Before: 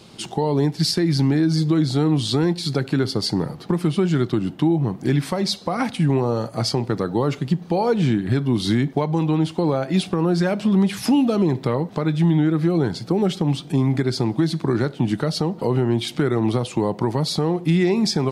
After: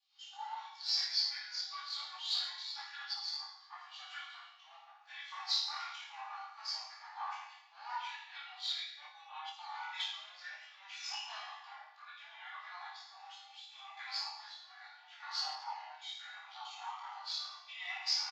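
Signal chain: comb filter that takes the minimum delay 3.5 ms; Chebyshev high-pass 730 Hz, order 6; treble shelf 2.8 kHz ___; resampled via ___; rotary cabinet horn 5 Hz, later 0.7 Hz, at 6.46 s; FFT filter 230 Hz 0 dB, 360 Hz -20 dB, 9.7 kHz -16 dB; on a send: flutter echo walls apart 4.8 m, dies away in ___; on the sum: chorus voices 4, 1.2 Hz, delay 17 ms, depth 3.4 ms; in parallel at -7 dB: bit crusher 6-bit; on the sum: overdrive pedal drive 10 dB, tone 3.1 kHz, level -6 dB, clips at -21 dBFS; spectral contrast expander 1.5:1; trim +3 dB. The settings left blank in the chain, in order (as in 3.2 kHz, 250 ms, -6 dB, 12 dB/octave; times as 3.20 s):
+11.5 dB, 16 kHz, 1.2 s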